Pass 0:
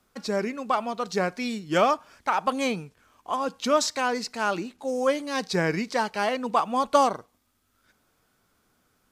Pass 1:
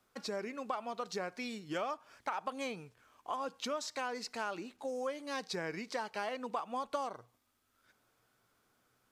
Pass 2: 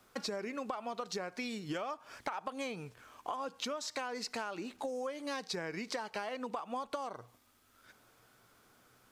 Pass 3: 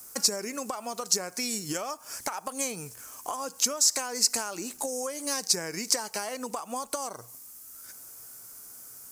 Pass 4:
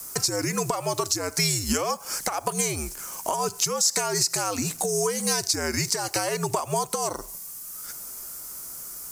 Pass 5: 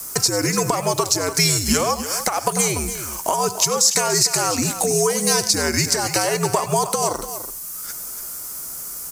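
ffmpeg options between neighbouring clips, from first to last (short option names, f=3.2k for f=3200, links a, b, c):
-af "equalizer=f=120:w=6.4:g=12.5,acompressor=threshold=-30dB:ratio=5,bass=f=250:g=-8,treble=f=4k:g=-2,volume=-4.5dB"
-af "acompressor=threshold=-45dB:ratio=6,volume=9dB"
-af "aexciter=amount=13.3:drive=2.9:freq=5.3k,volume=4dB"
-af "alimiter=limit=-19dB:level=0:latency=1:release=133,afreqshift=-84,volume=8.5dB"
-af "aecho=1:1:96|100|291:0.126|0.112|0.282,volume=6dB"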